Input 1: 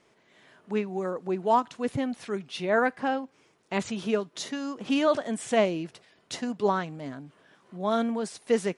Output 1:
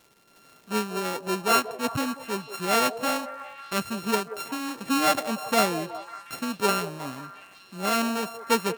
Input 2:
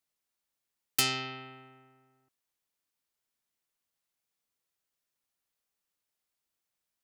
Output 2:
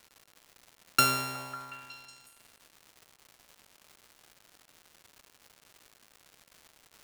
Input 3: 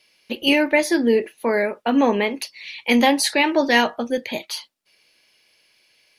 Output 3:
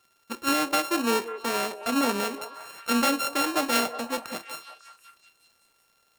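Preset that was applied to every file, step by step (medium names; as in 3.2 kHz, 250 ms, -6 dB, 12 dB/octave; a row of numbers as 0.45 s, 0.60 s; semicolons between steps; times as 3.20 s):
sorted samples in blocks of 32 samples; crackle 300 per s -46 dBFS; repeats whose band climbs or falls 183 ms, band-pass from 520 Hz, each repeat 0.7 oct, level -9 dB; peak normalisation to -9 dBFS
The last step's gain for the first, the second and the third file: +1.0 dB, +4.0 dB, -7.5 dB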